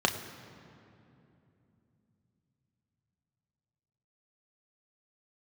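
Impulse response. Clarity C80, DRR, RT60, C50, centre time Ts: 10.5 dB, 3.5 dB, 2.9 s, 10.0 dB, 28 ms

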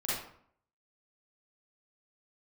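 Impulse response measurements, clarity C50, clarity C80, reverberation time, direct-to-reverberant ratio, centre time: −2.5 dB, 4.5 dB, 0.60 s, −9.0 dB, 68 ms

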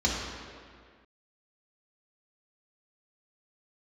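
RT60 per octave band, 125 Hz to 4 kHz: 1.7, 2.0, 1.9, 2.0, 1.9, 1.5 seconds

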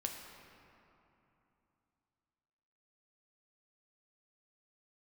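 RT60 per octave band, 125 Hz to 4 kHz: 3.6, 3.5, 2.9, 3.1, 2.5, 1.6 seconds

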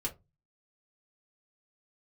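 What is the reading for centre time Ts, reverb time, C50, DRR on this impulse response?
11 ms, 0.20 s, 16.5 dB, −3.5 dB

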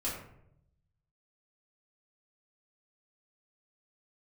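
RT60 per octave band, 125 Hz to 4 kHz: 1.4, 1.0, 0.85, 0.65, 0.55, 0.40 seconds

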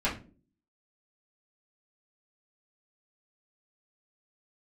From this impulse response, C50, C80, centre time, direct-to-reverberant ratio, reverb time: 10.0 dB, 16.5 dB, 22 ms, −9.0 dB, non-exponential decay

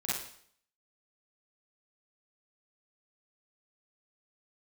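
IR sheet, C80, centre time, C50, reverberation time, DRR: 5.0 dB, 65 ms, −3.0 dB, 0.60 s, −8.5 dB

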